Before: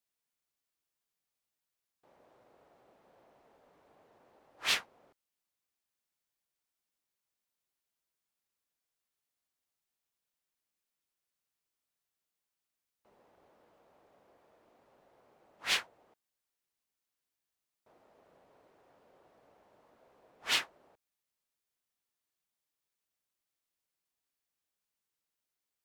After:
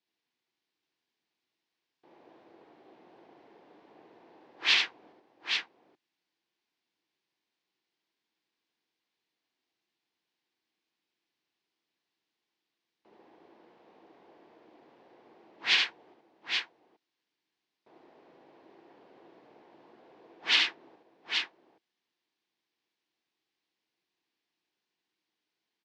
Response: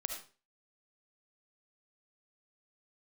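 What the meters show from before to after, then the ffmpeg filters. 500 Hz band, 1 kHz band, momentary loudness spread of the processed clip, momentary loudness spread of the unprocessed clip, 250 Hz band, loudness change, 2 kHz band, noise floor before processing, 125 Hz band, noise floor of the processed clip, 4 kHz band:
+3.0 dB, +3.5 dB, 15 LU, 12 LU, +7.5 dB, +5.0 dB, +8.0 dB, below −85 dBFS, can't be measured, below −85 dBFS, +8.0 dB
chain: -filter_complex "[0:a]acrossover=split=1000[link_01][link_02];[link_01]alimiter=level_in=20dB:limit=-24dB:level=0:latency=1:release=211,volume=-20dB[link_03];[link_03][link_02]amix=inputs=2:normalize=0,highpass=170,equalizer=frequency=330:width_type=q:width=4:gain=8,equalizer=frequency=580:width_type=q:width=4:gain=-7,equalizer=frequency=1300:width_type=q:width=4:gain=-7,lowpass=frequency=4800:width=0.5412,lowpass=frequency=4800:width=1.3066,aecho=1:1:72|825:0.668|0.531,volume=6.5dB"

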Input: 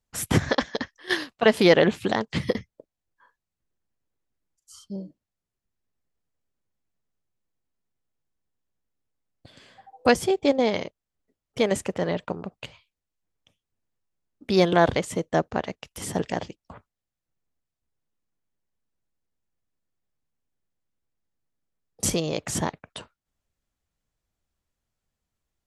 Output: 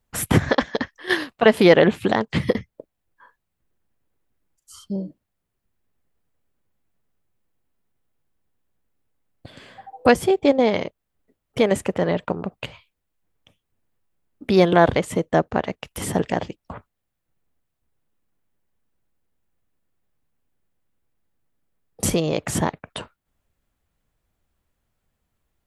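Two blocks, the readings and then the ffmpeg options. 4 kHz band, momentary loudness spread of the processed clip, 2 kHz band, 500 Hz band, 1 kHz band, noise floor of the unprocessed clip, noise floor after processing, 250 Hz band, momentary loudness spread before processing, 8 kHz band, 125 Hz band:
+1.0 dB, 19 LU, +3.5 dB, +4.0 dB, +4.0 dB, below −85 dBFS, −79 dBFS, +4.5 dB, 19 LU, +1.0 dB, +4.5 dB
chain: -filter_complex "[0:a]equalizer=frequency=5800:width=0.92:gain=-7.5,asplit=2[link_01][link_02];[link_02]acompressor=threshold=-34dB:ratio=6,volume=-0.5dB[link_03];[link_01][link_03]amix=inputs=2:normalize=0,volume=3dB"

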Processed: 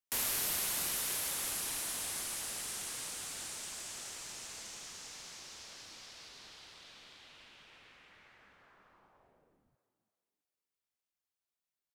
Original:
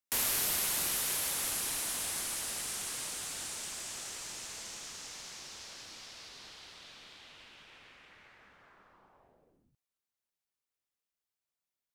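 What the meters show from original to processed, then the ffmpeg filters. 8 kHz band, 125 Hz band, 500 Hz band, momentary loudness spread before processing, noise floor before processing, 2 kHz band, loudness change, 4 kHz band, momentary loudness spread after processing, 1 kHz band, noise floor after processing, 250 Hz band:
−3.0 dB, −3.0 dB, −3.0 dB, 21 LU, below −85 dBFS, −3.0 dB, −3.0 dB, −3.0 dB, 21 LU, −3.0 dB, below −85 dBFS, −3.0 dB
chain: -filter_complex "[0:a]asplit=4[link_01][link_02][link_03][link_04];[link_02]adelay=328,afreqshift=85,volume=-14dB[link_05];[link_03]adelay=656,afreqshift=170,volume=-23.1dB[link_06];[link_04]adelay=984,afreqshift=255,volume=-32.2dB[link_07];[link_01][link_05][link_06][link_07]amix=inputs=4:normalize=0,volume=-3dB"

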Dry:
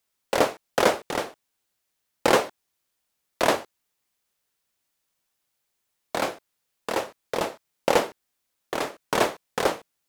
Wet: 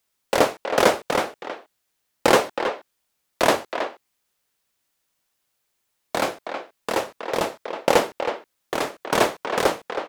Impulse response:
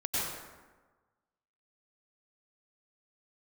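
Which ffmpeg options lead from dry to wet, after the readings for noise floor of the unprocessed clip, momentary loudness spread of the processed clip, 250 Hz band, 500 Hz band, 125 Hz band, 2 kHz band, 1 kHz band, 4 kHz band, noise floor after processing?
−78 dBFS, 13 LU, +3.5 dB, +3.5 dB, +3.0 dB, +3.5 dB, +3.5 dB, +3.5 dB, −75 dBFS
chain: -filter_complex "[0:a]asplit=2[link_01][link_02];[link_02]adelay=320,highpass=300,lowpass=3400,asoftclip=type=hard:threshold=-12.5dB,volume=-7dB[link_03];[link_01][link_03]amix=inputs=2:normalize=0,volume=3dB"

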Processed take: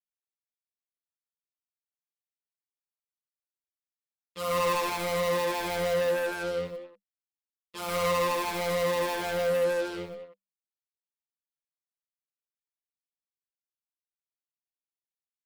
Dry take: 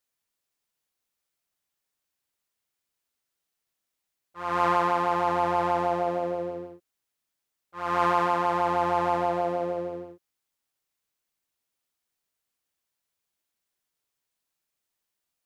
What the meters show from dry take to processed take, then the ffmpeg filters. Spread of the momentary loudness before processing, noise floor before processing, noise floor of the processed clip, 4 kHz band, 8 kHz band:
12 LU, −84 dBFS, below −85 dBFS, +7.5 dB, can't be measured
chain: -filter_complex "[0:a]acontrast=88,acrusher=bits=4:mix=0:aa=0.5,equalizer=frequency=200:width_type=o:width=0.33:gain=12,equalizer=frequency=500:width_type=o:width=0.33:gain=11,equalizer=frequency=800:width_type=o:width=0.33:gain=-10,equalizer=frequency=1600:width_type=o:width=0.33:gain=-11,equalizer=frequency=6300:width_type=o:width=0.33:gain=-6,areverse,acompressor=mode=upward:threshold=-34dB:ratio=2.5,areverse,asoftclip=type=tanh:threshold=-18.5dB,highshelf=frequency=2100:gain=10,asplit=2[link_01][link_02];[link_02]adelay=190,highpass=300,lowpass=3400,asoftclip=type=hard:threshold=-22dB,volume=-10dB[link_03];[link_01][link_03]amix=inputs=2:normalize=0,asplit=2[link_04][link_05];[link_05]adelay=6.6,afreqshift=-1.4[link_06];[link_04][link_06]amix=inputs=2:normalize=1,volume=-3.5dB"

